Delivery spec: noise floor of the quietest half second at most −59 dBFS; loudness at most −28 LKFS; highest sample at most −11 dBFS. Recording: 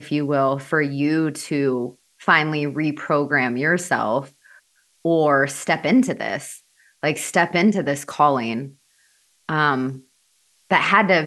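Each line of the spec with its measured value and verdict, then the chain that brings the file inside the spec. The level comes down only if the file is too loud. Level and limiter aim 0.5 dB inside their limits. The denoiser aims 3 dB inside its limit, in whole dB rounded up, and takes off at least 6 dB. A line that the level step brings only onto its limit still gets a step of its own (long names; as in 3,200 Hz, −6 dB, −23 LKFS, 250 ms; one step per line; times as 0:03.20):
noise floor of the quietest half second −63 dBFS: in spec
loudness −20.5 LKFS: out of spec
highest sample −2.0 dBFS: out of spec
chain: level −8 dB
brickwall limiter −11.5 dBFS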